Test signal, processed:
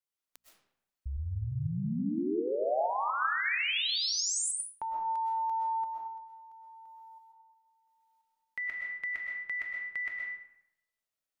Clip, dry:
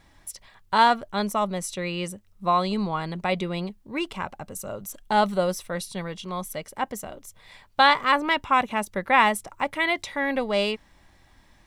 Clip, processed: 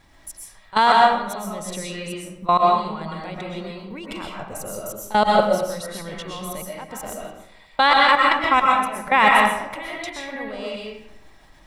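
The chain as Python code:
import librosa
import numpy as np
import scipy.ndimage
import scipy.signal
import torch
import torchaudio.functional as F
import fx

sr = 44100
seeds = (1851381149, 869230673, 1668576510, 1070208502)

y = fx.hum_notches(x, sr, base_hz=60, count=4)
y = fx.level_steps(y, sr, step_db=20)
y = fx.rev_freeverb(y, sr, rt60_s=0.81, hf_ratio=0.7, predelay_ms=85, drr_db=-2.5)
y = y * librosa.db_to_amplitude(5.0)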